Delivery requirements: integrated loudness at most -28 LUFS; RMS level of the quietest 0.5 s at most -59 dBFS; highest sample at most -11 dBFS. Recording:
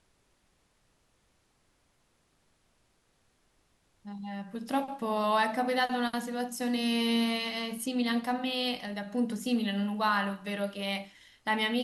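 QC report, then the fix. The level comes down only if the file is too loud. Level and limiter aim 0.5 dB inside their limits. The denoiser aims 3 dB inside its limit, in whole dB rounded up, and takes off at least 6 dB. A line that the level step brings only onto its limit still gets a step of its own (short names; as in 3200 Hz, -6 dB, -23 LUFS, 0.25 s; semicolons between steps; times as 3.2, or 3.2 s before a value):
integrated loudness -31.0 LUFS: OK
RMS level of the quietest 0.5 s -71 dBFS: OK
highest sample -15.0 dBFS: OK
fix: none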